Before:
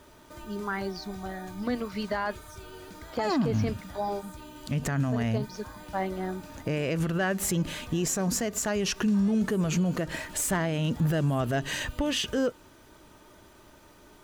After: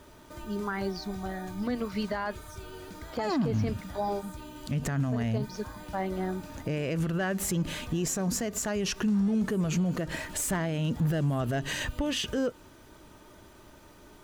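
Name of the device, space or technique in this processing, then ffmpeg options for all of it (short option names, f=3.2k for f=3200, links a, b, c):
clipper into limiter: -af "lowshelf=f=320:g=3,asoftclip=type=hard:threshold=-18dB,alimiter=limit=-21.5dB:level=0:latency=1:release=99"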